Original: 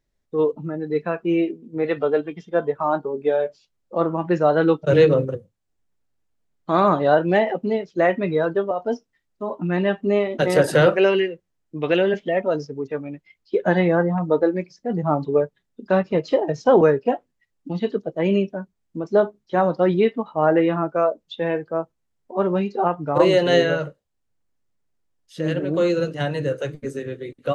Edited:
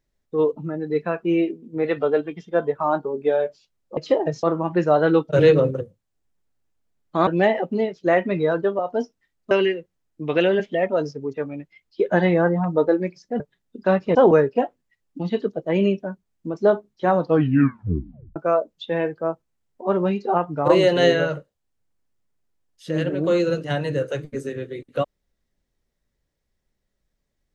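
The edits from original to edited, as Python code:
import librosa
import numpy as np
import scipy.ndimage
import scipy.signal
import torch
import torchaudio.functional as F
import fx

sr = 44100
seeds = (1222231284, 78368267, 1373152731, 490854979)

y = fx.edit(x, sr, fx.cut(start_s=6.81, length_s=0.38),
    fx.cut(start_s=9.43, length_s=1.62),
    fx.cut(start_s=14.94, length_s=0.5),
    fx.move(start_s=16.19, length_s=0.46, to_s=3.97),
    fx.tape_stop(start_s=19.7, length_s=1.16), tone=tone)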